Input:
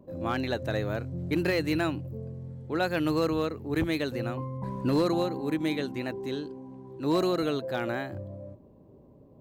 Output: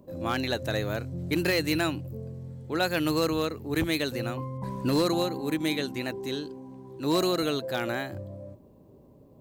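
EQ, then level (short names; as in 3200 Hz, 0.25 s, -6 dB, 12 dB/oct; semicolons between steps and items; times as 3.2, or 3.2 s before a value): high shelf 3300 Hz +11 dB; 0.0 dB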